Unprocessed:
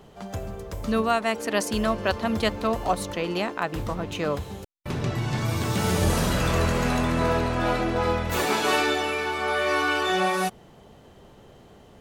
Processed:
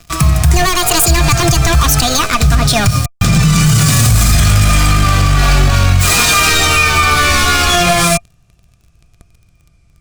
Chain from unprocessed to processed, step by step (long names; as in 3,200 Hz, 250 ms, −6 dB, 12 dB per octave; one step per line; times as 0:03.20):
gliding playback speed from 166% → 74%
drawn EQ curve 150 Hz 0 dB, 260 Hz −9 dB, 380 Hz −8 dB, 570 Hz −6 dB, 1,100 Hz +8 dB, 2,800 Hz +3 dB, 7,700 Hz +12 dB, 12,000 Hz +5 dB
leveller curve on the samples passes 5
guitar amp tone stack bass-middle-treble 10-0-1
hollow resonant body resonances 690/1,200/2,400 Hz, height 13 dB, ringing for 50 ms
boost into a limiter +23.5 dB
level −1 dB